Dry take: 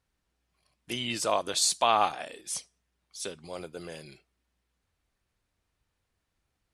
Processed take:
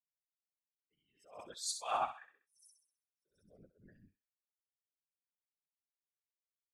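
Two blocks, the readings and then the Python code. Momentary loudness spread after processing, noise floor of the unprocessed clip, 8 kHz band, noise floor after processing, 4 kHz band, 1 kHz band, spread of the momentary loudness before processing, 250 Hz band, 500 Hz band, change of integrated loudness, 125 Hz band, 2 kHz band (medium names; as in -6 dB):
19 LU, -81 dBFS, -14.5 dB, under -85 dBFS, -17.0 dB, -12.0 dB, 18 LU, -22.5 dB, -16.5 dB, -10.0 dB, -20.5 dB, -16.0 dB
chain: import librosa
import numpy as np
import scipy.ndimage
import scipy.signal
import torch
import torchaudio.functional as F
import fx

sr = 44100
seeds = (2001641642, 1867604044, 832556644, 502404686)

y = fx.bin_expand(x, sr, power=3.0)
y = fx.high_shelf(y, sr, hz=7000.0, db=-3.5)
y = fx.whisperise(y, sr, seeds[0])
y = fx.echo_thinned(y, sr, ms=65, feedback_pct=46, hz=1000.0, wet_db=-9.0)
y = fx.attack_slew(y, sr, db_per_s=130.0)
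y = F.gain(torch.from_numpy(y), -5.0).numpy()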